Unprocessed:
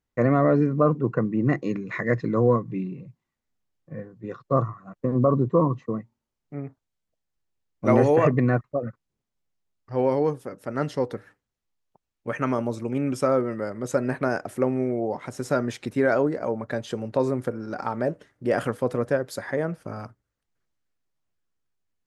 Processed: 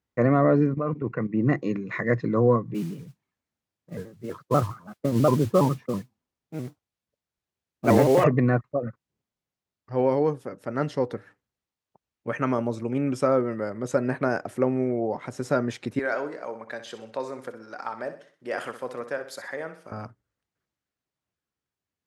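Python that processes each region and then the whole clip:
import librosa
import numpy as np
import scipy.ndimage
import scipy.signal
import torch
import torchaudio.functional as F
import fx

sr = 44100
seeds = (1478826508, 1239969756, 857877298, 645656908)

y = fx.chain(x, sr, fx.peak_eq(hz=2200.0, db=14.0, octaves=0.55),
    fx.level_steps(step_db=13), at=(0.74, 1.34))
y = fx.chain(y, sr, fx.mod_noise(seeds[0], snr_db=19),
    fx.vibrato_shape(shape='square', rate_hz=6.1, depth_cents=160.0), at=(2.74, 8.24))
y = fx.chain(y, sr, fx.highpass(hz=1200.0, slope=6),
    fx.echo_feedback(ms=63, feedback_pct=40, wet_db=-11), at=(15.99, 19.92))
y = scipy.signal.sosfilt(scipy.signal.butter(2, 63.0, 'highpass', fs=sr, output='sos'), y)
y = fx.high_shelf(y, sr, hz=9300.0, db=-9.0)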